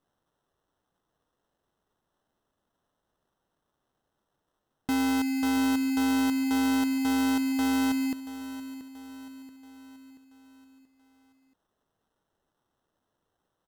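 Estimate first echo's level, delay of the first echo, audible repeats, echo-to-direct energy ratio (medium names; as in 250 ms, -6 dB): -14.0 dB, 681 ms, 4, -12.5 dB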